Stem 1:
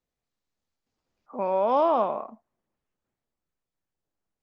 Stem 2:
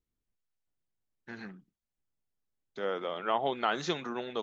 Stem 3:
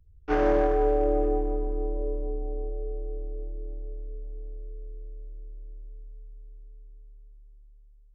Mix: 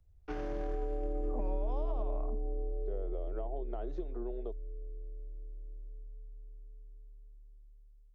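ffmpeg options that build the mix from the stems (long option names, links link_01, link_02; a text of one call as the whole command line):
ffmpeg -i stem1.wav -i stem2.wav -i stem3.wav -filter_complex "[0:a]bandreject=frequency=670:width=15,acompressor=threshold=-29dB:ratio=6,volume=-6dB[link_01];[1:a]bandpass=frequency=380:width_type=q:width=4.4:csg=0,adelay=100,volume=1dB[link_02];[2:a]alimiter=limit=-19.5dB:level=0:latency=1,volume=-7.5dB[link_03];[link_01][link_02]amix=inputs=2:normalize=0,equalizer=frequency=660:width=3.1:gain=13,acompressor=threshold=-35dB:ratio=6,volume=0dB[link_04];[link_03][link_04]amix=inputs=2:normalize=0,dynaudnorm=framelen=300:gausssize=3:maxgain=4dB,acrossover=split=250|3000[link_05][link_06][link_07];[link_06]acompressor=threshold=-43dB:ratio=3[link_08];[link_05][link_08][link_07]amix=inputs=3:normalize=0" out.wav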